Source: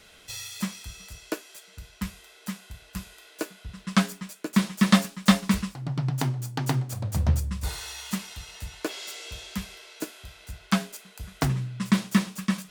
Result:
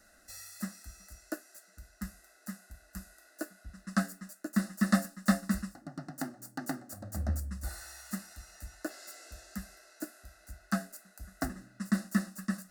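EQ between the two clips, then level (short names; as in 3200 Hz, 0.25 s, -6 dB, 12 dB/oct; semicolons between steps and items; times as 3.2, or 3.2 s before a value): dynamic EQ 6300 Hz, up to -4 dB, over -51 dBFS, Q 5; Butterworth band-stop 2300 Hz, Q 3.7; fixed phaser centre 650 Hz, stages 8; -4.5 dB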